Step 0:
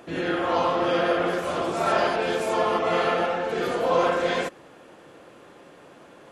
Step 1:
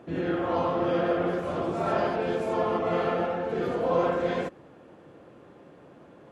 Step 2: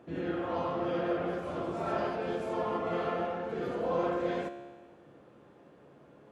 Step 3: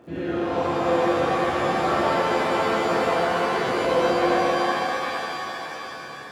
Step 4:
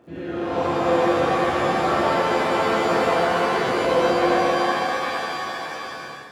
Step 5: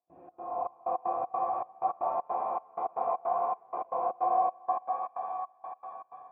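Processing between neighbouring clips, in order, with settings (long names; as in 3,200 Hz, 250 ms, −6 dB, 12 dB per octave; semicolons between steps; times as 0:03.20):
high-pass filter 70 Hz; spectral tilt −3 dB per octave; level −5.5 dB
tuned comb filter 70 Hz, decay 1.5 s, harmonics all, mix 70%; level +3 dB
surface crackle 81 per second −57 dBFS; reverb with rising layers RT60 3.6 s, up +7 semitones, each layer −2 dB, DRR −1 dB; level +5 dB
automatic gain control gain up to 6 dB; level −3.5 dB
gate pattern ".xx.xxx..x" 157 BPM −24 dB; formant resonators in series a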